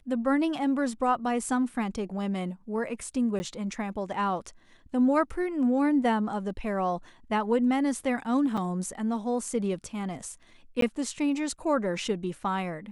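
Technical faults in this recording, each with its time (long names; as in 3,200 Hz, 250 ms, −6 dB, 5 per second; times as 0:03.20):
0:03.39–0:03.40: drop-out 10 ms
0:08.57–0:08.58: drop-out 5.4 ms
0:10.81–0:10.82: drop-out 13 ms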